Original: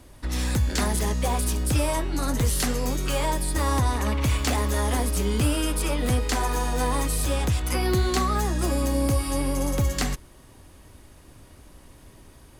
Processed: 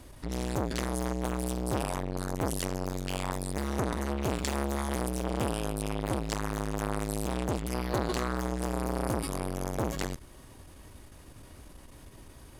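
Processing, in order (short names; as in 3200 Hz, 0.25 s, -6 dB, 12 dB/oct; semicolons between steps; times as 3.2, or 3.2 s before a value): core saturation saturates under 810 Hz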